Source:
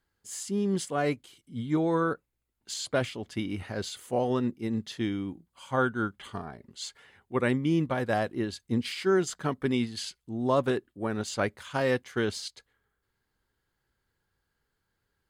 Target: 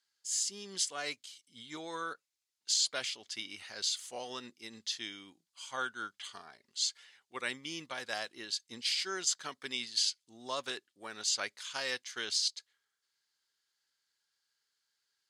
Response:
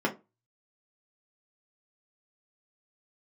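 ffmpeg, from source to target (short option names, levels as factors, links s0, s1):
-af "bandpass=f=5400:t=q:w=1.6:csg=0,volume=2.82"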